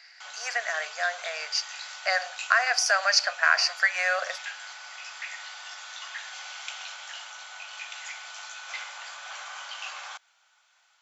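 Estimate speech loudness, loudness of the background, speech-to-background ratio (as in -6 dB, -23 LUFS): -25.0 LUFS, -38.5 LUFS, 13.5 dB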